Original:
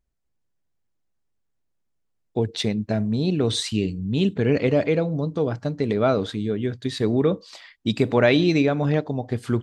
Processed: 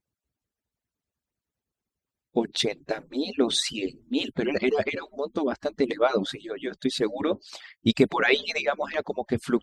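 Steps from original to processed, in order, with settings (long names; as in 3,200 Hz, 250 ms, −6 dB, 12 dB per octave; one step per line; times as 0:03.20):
harmonic-percussive split with one part muted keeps percussive
level +2 dB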